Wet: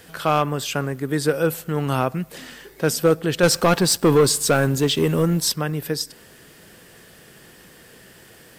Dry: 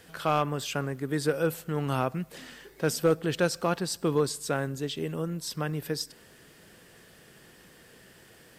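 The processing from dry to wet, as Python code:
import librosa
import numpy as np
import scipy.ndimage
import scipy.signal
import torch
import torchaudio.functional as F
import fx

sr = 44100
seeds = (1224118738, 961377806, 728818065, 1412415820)

y = fx.high_shelf(x, sr, hz=12000.0, db=5.5)
y = fx.leveller(y, sr, passes=2, at=(3.43, 5.52))
y = y * librosa.db_to_amplitude(6.5)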